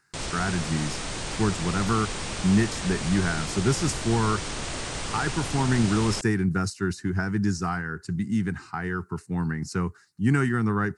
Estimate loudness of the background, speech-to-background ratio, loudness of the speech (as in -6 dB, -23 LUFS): -32.0 LUFS, 5.0 dB, -27.0 LUFS